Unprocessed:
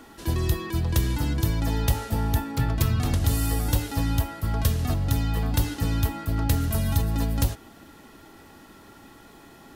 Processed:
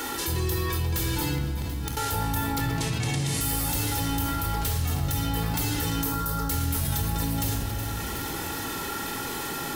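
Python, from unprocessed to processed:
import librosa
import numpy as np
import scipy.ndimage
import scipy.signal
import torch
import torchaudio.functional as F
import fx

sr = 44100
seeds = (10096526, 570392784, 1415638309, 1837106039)

y = fx.tracing_dist(x, sr, depth_ms=0.026)
y = fx.tilt_eq(y, sr, slope=2.5)
y = fx.gate_flip(y, sr, shuts_db=-20.0, range_db=-34, at=(1.36, 1.97))
y = fx.fixed_phaser(y, sr, hz=490.0, stages=8, at=(6.01, 6.51))
y = 10.0 ** (-25.0 / 20.0) * np.tanh(y / 10.0 ** (-25.0 / 20.0))
y = fx.cabinet(y, sr, low_hz=120.0, low_slope=24, high_hz=9600.0, hz=(140.0, 1300.0, 2100.0), db=(5, -9, 4), at=(2.7, 3.41))
y = fx.echo_feedback(y, sr, ms=368, feedback_pct=55, wet_db=-19.0)
y = fx.room_shoebox(y, sr, seeds[0], volume_m3=3400.0, walls='furnished', distance_m=4.3)
y = fx.env_flatten(y, sr, amount_pct=70)
y = y * 10.0 ** (-3.5 / 20.0)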